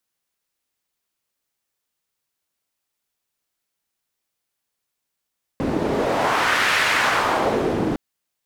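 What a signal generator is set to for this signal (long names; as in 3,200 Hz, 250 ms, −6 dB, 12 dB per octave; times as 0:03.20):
wind from filtered noise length 2.36 s, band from 300 Hz, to 1,900 Hz, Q 1.4, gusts 1, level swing 3 dB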